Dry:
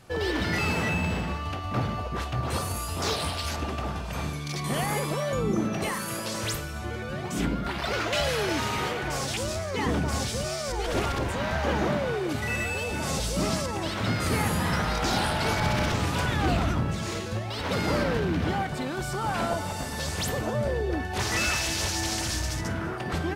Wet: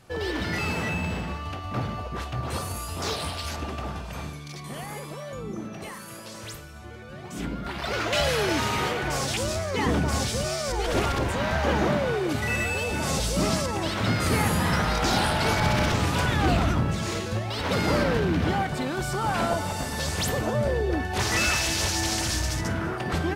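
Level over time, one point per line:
0:03.99 −1.5 dB
0:04.73 −8.5 dB
0:07.05 −8.5 dB
0:08.20 +2.5 dB

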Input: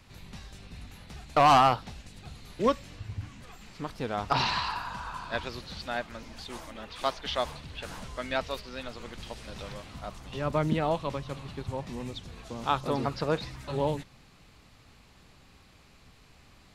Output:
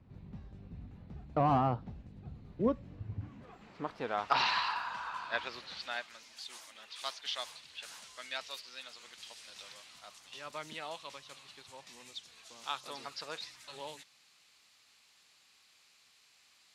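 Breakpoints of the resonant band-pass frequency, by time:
resonant band-pass, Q 0.55
0:02.84 150 Hz
0:03.79 640 Hz
0:04.30 1,900 Hz
0:05.69 1,900 Hz
0:06.19 6,800 Hz

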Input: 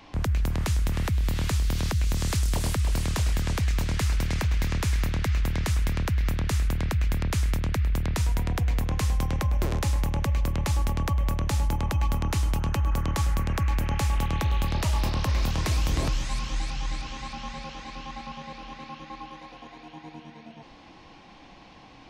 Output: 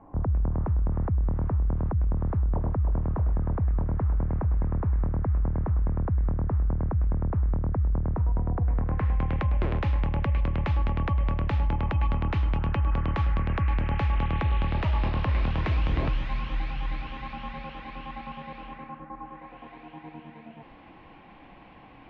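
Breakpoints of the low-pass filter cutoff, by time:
low-pass filter 24 dB per octave
0:08.55 1,100 Hz
0:09.39 2,900 Hz
0:18.62 2,900 Hz
0:19.12 1,500 Hz
0:19.68 2,700 Hz

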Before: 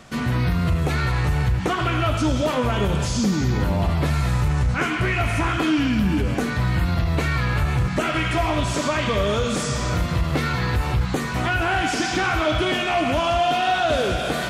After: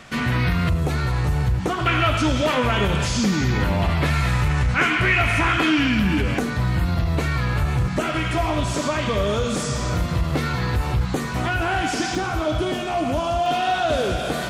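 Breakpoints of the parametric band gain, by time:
parametric band 2,200 Hz 1.7 octaves
+6.5 dB
from 0:00.69 −4.5 dB
from 0:01.86 +7 dB
from 0:06.39 −2.5 dB
from 0:12.15 −9.5 dB
from 0:13.46 −3 dB

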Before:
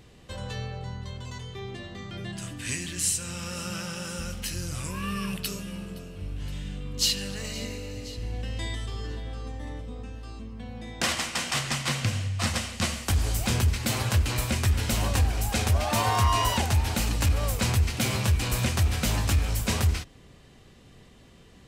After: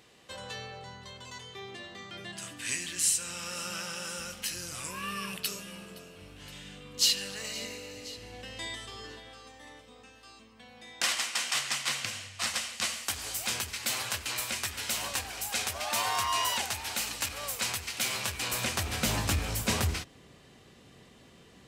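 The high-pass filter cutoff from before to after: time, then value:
high-pass filter 6 dB per octave
0:09.03 640 Hz
0:09.43 1,500 Hz
0:18.05 1,500 Hz
0:18.78 470 Hz
0:19.10 170 Hz

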